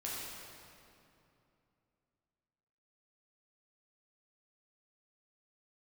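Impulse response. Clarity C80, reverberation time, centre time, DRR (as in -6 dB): -1.0 dB, 2.7 s, 0.151 s, -6.5 dB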